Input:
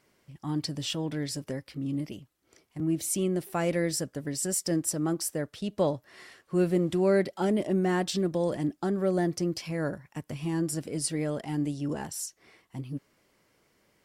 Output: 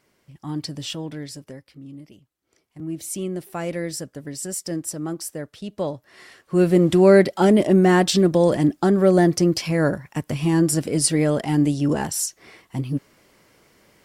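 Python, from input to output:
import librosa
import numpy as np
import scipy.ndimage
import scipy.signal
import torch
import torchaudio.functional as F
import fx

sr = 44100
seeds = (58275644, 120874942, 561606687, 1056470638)

y = fx.gain(x, sr, db=fx.line((0.9, 2.0), (2.01, -9.0), (3.18, 0.0), (5.94, 0.0), (6.89, 11.0)))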